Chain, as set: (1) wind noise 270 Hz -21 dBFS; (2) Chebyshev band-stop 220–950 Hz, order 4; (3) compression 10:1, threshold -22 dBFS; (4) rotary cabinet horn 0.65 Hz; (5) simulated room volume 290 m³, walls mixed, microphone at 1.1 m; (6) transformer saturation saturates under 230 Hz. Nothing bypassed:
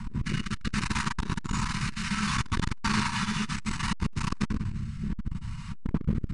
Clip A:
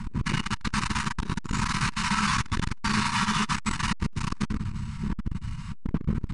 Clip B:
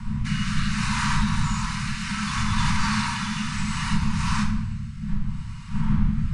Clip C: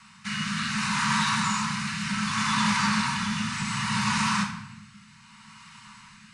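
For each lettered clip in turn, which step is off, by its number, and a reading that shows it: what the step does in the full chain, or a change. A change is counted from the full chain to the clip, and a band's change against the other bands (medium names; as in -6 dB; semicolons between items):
4, 1 kHz band +2.5 dB; 6, crest factor change -4.5 dB; 1, 500 Hz band -17.0 dB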